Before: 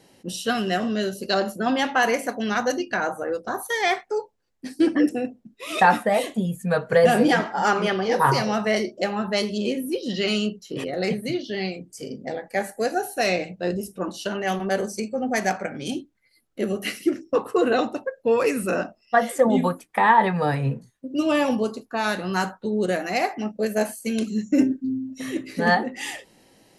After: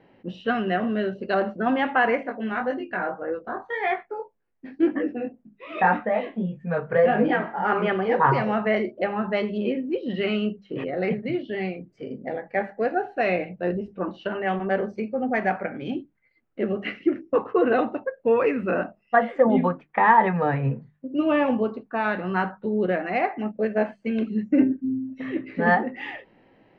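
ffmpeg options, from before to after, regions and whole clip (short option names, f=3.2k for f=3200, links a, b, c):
-filter_complex "[0:a]asettb=1/sr,asplit=3[a][b][c];[a]atrim=end=2.234[d];[b]atrim=start=2.23:end=7.72,asetpts=PTS-STARTPTS,afade=t=in:d=0.004:c=qsin,afade=t=out:st=5.486:d=0.004:c=qsin,highshelf=f=6.9k:g=-7.5,flanger=delay=18.5:depth=3.9:speed=1.8[e];[c]atrim=start=7.716[f];[d][e]acrossfade=d=0.004:c1=hsin:c2=qsin[g];[g][f]acrossfade=d=0.004:c1=qsin:c2=hsin,lowpass=f=2.5k:w=0.5412,lowpass=f=2.5k:w=1.3066,bandreject=f=50:t=h:w=6,bandreject=f=100:t=h:w=6,bandreject=f=150:t=h:w=6,bandreject=f=200:t=h:w=6"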